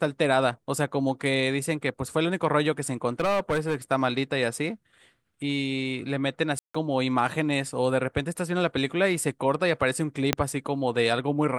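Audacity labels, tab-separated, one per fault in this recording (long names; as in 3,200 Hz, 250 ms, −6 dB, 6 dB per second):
3.200000	3.760000	clipping −20.5 dBFS
6.590000	6.750000	drop-out 155 ms
10.330000	10.330000	click −5 dBFS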